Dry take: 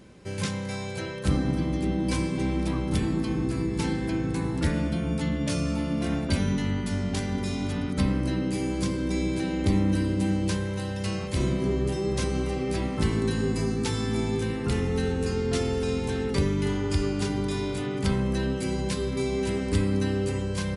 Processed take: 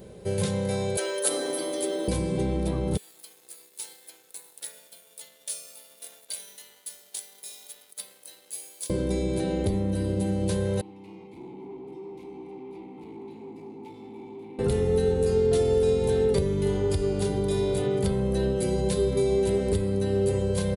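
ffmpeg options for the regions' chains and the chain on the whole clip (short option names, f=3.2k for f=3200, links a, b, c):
-filter_complex "[0:a]asettb=1/sr,asplit=3[a][b][c];[a]atrim=end=0.974[d];[b]atrim=start=0.97:end=2.08,asetpts=PTS-STARTPTS,afade=t=in:d=0.004:c=qsin,afade=t=out:st=1.106:d=0.004:c=qsin,highpass=f=330:w=0.5412,highpass=f=330:w=1.3066,aemphasis=mode=production:type=bsi,aecho=1:1:7:0.67,atrim=end_sample=48951[e];[c]atrim=start=2.076[f];[d][e]acrossfade=d=0.004:c1=hsin:c2=qsin[g];[g][f]acrossfade=d=0.004:c1=qsin:c2=hsin,asettb=1/sr,asplit=3[h][i][j];[h]atrim=end=2.974[k];[i]atrim=start=2.97:end=8.9,asetpts=PTS-STARTPTS,afade=t=in:d=0.004:c=qsin,afade=t=out:st=5.926:d=0.004:c=qsin,aderivative,aeval=exprs='sgn(val(0))*max(abs(val(0))-0.002,0)':c=same,highpass=f=730:p=1[l];[j]atrim=start=8.896[m];[k][l]acrossfade=d=0.004:c1=hsin:c2=qsin[n];[n][m]acrossfade=d=0.004:c1=qsin:c2=hsin,asettb=1/sr,asplit=3[o][p][q];[o]atrim=end=10.814[r];[p]atrim=start=10.81:end=14.59,asetpts=PTS-STARTPTS,afade=t=in:d=0.004:c=qsin,afade=t=out:st=3.776:d=0.004:c=qsin,equalizer=f=64:t=o:w=1.4:g=-7,asoftclip=type=hard:threshold=-31dB,asplit=3[s][t][u];[s]bandpass=f=300:t=q:w=8,volume=0dB[v];[t]bandpass=f=870:t=q:w=8,volume=-6dB[w];[u]bandpass=f=2.24k:t=q:w=8,volume=-9dB[x];[v][w][x]amix=inputs=3:normalize=0[y];[q]atrim=start=14.586[z];[r][y]acrossfade=d=0.004:c1=hsin:c2=qsin[aa];[aa][z]acrossfade=d=0.004:c1=qsin:c2=hsin,equalizer=f=2.6k:t=o:w=1.1:g=-5.5,acompressor=threshold=-27dB:ratio=6,firequalizer=gain_entry='entry(200,0);entry(280,-8);entry(420,8);entry(1100,-6);entry(3700,2);entry(5300,-6);entry(12000,9)':delay=0.05:min_phase=1,volume=4.5dB"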